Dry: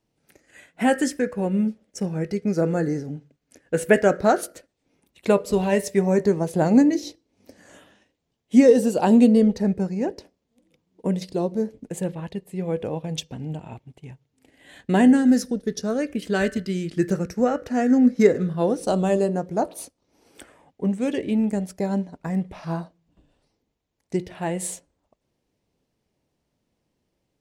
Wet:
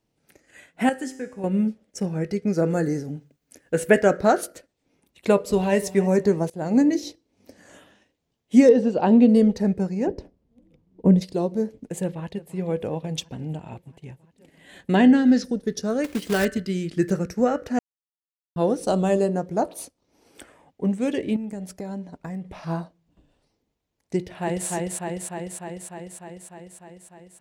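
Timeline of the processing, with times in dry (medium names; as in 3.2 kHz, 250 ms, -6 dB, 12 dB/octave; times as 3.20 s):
0.89–1.44 s: feedback comb 130 Hz, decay 0.82 s, mix 70%
2.70–3.74 s: treble shelf 8.8 kHz +11.5 dB
5.41–5.93 s: echo throw 290 ms, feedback 30%, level -17.5 dB
6.50–6.91 s: fade in, from -20.5 dB
8.69–9.29 s: distance through air 210 m
10.07–11.21 s: tilt EQ -3.5 dB/octave
12.02–12.55 s: echo throw 340 ms, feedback 80%, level -17.5 dB
14.95–15.44 s: resonant low-pass 4 kHz, resonance Q 1.7
16.04–16.45 s: companded quantiser 4-bit
17.79–18.56 s: mute
21.36–22.57 s: compression 5:1, threshold -30 dBFS
24.17–24.68 s: echo throw 300 ms, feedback 75%, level -1.5 dB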